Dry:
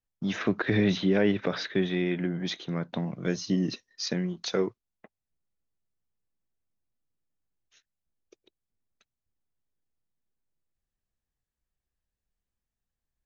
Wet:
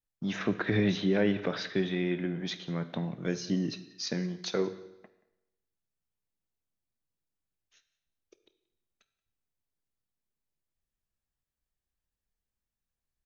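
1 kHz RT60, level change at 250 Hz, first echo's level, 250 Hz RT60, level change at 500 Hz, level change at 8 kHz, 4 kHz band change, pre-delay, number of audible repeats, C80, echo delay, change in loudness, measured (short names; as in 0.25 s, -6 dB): 0.90 s, -3.0 dB, -22.5 dB, 0.90 s, -2.5 dB, n/a, -2.5 dB, 21 ms, 1, 15.0 dB, 0.179 s, -2.5 dB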